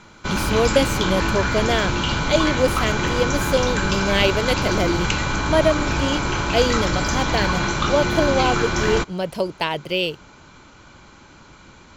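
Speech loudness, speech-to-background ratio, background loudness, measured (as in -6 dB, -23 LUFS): -23.0 LUFS, -1.0 dB, -22.0 LUFS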